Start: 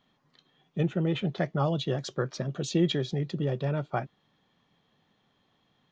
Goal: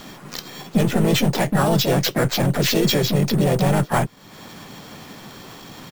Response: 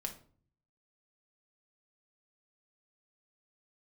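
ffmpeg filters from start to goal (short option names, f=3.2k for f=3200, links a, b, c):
-filter_complex "[0:a]apsyclip=30.5dB,acrusher=samples=5:mix=1:aa=0.000001,aeval=exprs='1.06*(cos(1*acos(clip(val(0)/1.06,-1,1)))-cos(1*PI/2))+0.0299*(cos(7*acos(clip(val(0)/1.06,-1,1)))-cos(7*PI/2))+0.0596*(cos(8*acos(clip(val(0)/1.06,-1,1)))-cos(8*PI/2))':c=same,acompressor=threshold=-27dB:ratio=2.5,asplit=4[a][b][c][d];[b]asetrate=33038,aresample=44100,atempo=1.33484,volume=-16dB[e];[c]asetrate=52444,aresample=44100,atempo=0.840896,volume=-9dB[f];[d]asetrate=58866,aresample=44100,atempo=0.749154,volume=-4dB[g];[a][e][f][g]amix=inputs=4:normalize=0"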